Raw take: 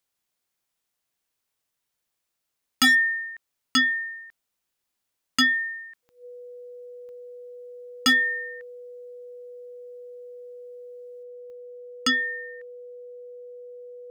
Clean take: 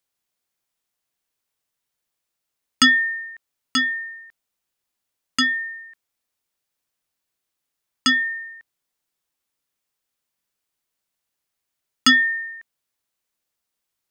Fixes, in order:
clipped peaks rebuilt −15 dBFS
click removal
notch filter 490 Hz, Q 30
level 0 dB, from 0:11.23 +8 dB

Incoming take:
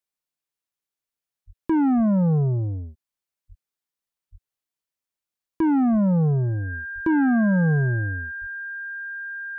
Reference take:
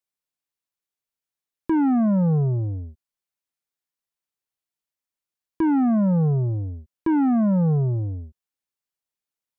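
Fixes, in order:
notch filter 1,600 Hz, Q 30
high-pass at the plosives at 0:01.46/0:01.96/0:03.48/0:04.31/0:05.91/0:06.94/0:08.40

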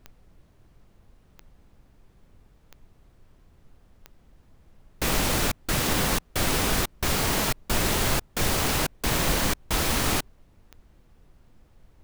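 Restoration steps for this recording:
click removal
noise reduction from a noise print 15 dB

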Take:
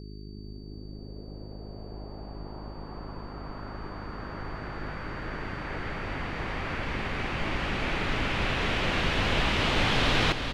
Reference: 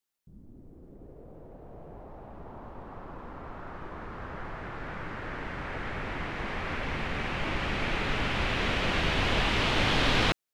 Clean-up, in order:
hum removal 51.5 Hz, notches 8
notch filter 4,600 Hz, Q 30
echo removal 389 ms −7.5 dB

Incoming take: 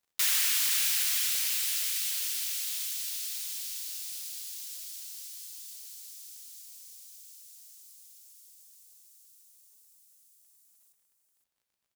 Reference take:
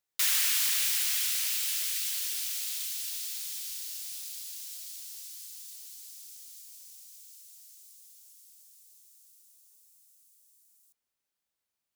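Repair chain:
clipped peaks rebuilt −17.5 dBFS
click removal
echo removal 516 ms −9.5 dB

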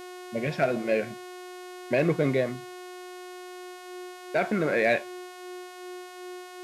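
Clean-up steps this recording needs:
clipped peaks rebuilt −14 dBFS
hum removal 362.6 Hz, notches 37
notch filter 360 Hz, Q 30

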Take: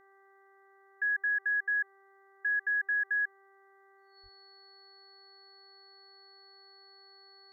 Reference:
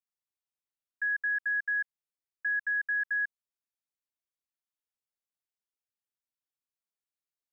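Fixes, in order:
hum removal 391.1 Hz, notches 5
notch filter 4,400 Hz, Q 30
0:04.22–0:04.34: high-pass filter 140 Hz 24 dB per octave

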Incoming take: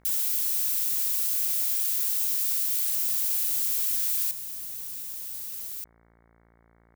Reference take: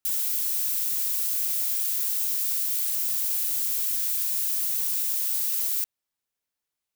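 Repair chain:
hum removal 57.2 Hz, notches 39
level 0 dB, from 0:04.31 +10 dB

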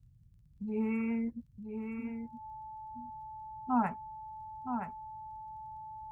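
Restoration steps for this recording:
click removal
notch filter 870 Hz, Q 30
noise reduction from a noise print 22 dB
echo removal 970 ms −7 dB

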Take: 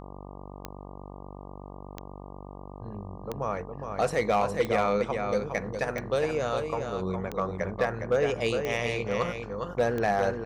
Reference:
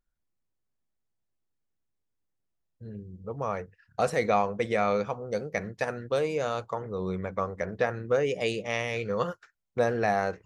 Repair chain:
clipped peaks rebuilt −16.5 dBFS
click removal
hum removal 48.2 Hz, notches 25
echo removal 411 ms −6 dB

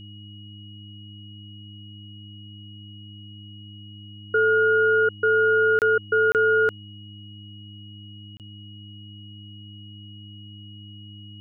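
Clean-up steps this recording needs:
hum removal 103.5 Hz, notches 3
notch filter 2,900 Hz, Q 30
repair the gap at 0:05.79/0:06.32/0:08.37, 28 ms

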